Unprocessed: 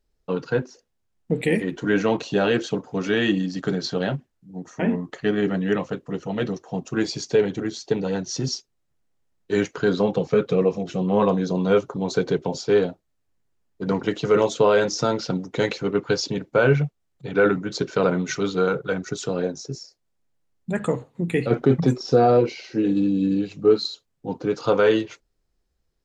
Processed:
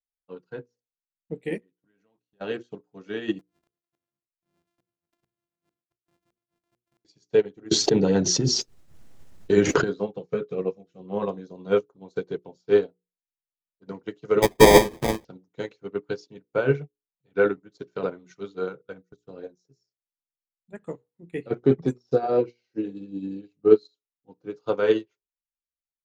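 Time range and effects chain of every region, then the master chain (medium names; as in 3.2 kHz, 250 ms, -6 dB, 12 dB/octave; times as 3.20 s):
1.58–2.41 s: gate -29 dBFS, range -24 dB + compression 3:1, threshold -35 dBFS
3.39–7.05 s: sorted samples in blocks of 128 samples + inverted gate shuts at -17 dBFS, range -34 dB + compression 2.5:1, threshold -38 dBFS
7.71–9.84 s: bass shelf 320 Hz +6 dB + level flattener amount 100%
14.42–15.25 s: square wave that keeps the level + sample-rate reducer 1.4 kHz
18.82–19.41 s: gate -30 dBFS, range -14 dB + bass shelf 270 Hz +2.5 dB
whole clip: hum notches 60/120/180/240/300/360/420/480 Hz; dynamic bell 370 Hz, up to +5 dB, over -33 dBFS, Q 1.7; upward expansion 2.5:1, over -33 dBFS; trim +1.5 dB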